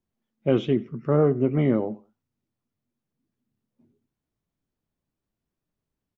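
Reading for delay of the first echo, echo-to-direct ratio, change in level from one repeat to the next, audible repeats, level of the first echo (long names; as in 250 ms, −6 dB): 90 ms, −22.0 dB, −11.5 dB, 2, −22.5 dB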